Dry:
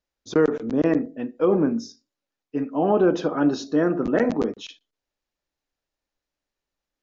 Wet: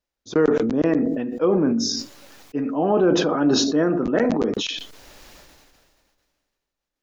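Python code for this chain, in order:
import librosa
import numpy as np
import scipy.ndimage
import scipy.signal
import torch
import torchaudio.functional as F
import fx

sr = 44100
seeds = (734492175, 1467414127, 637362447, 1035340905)

y = fx.sustainer(x, sr, db_per_s=28.0)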